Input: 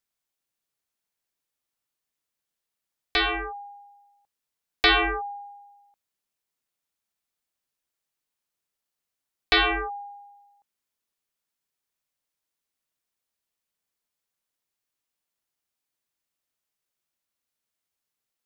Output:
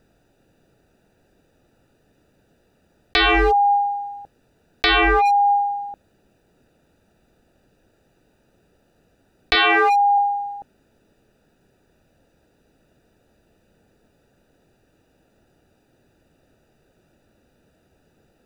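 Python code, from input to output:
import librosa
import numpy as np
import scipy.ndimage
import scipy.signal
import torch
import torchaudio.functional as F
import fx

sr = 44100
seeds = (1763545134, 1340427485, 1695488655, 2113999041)

y = fx.wiener(x, sr, points=41)
y = fx.highpass(y, sr, hz=390.0, slope=12, at=(9.55, 10.18))
y = fx.env_flatten(y, sr, amount_pct=100)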